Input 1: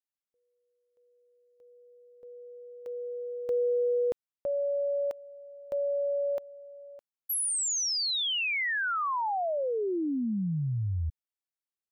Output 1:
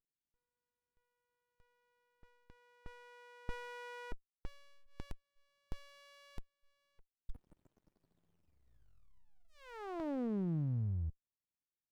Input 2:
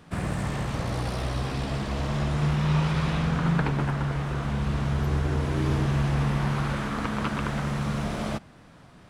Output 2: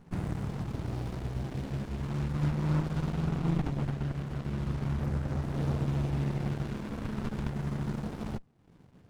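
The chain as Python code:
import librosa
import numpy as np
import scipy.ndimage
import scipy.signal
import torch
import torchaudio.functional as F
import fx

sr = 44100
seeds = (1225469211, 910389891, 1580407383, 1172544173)

y = scipy.signal.sosfilt(scipy.signal.butter(2, 70.0, 'highpass', fs=sr, output='sos'), x)
y = fx.dereverb_blind(y, sr, rt60_s=0.69)
y = fx.filter_lfo_notch(y, sr, shape='saw_down', hz=0.4, low_hz=510.0, high_hz=3300.0, q=1.9)
y = fx.running_max(y, sr, window=65)
y = F.gain(torch.from_numpy(y), -1.5).numpy()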